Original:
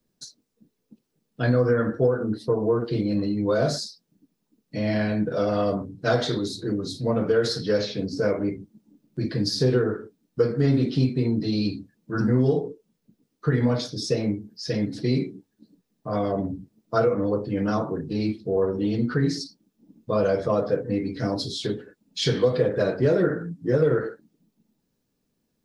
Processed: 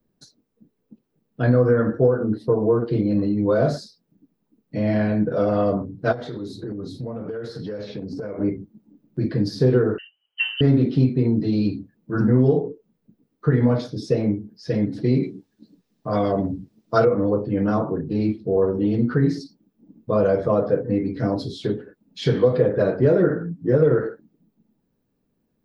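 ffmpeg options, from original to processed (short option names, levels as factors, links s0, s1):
-filter_complex "[0:a]asplit=3[s0][s1][s2];[s0]afade=t=out:st=6.11:d=0.02[s3];[s1]acompressor=threshold=0.0316:ratio=16:attack=3.2:release=140:knee=1:detection=peak,afade=t=in:st=6.11:d=0.02,afade=t=out:st=8.38:d=0.02[s4];[s2]afade=t=in:st=8.38:d=0.02[s5];[s3][s4][s5]amix=inputs=3:normalize=0,asettb=1/sr,asplit=3[s6][s7][s8];[s6]atrim=end=9.984[s9];[s7]atrim=start=9.98:end=10.61,asetpts=PTS-STARTPTS,afade=t=in:d=0.004:c=qsin,afade=t=out:st=0.626:d=0.004:c=qsin,lowpass=f=2700:t=q:w=0.5098,lowpass=f=2700:t=q:w=0.6013,lowpass=f=2700:t=q:w=0.9,lowpass=f=2700:t=q:w=2.563,afreqshift=-3200[s10];[s8]atrim=start=10.606[s11];[s9][s10]acrossfade=d=0.004:c1=hsin:c2=qsin[s12];[s12][s11]acrossfade=d=0.004:c1=qsin:c2=hsin,asettb=1/sr,asplit=3[s13][s14][s15];[s13]atrim=end=15.234[s16];[s14]atrim=start=15.23:end=17.05,asetpts=PTS-STARTPTS,afade=t=in:d=0.004:c=qsin,afade=t=out:st=1.816:d=0.004:c=qsin,equalizer=f=5200:t=o:w=2.4:g=13[s17];[s15]atrim=start=17.046[s18];[s16][s17]acrossfade=d=0.004:c1=hsin:c2=qsin[s19];[s19][s18]acrossfade=d=0.004:c1=qsin:c2=hsin,equalizer=f=7100:t=o:w=2.6:g=-14.5,volume=1.58"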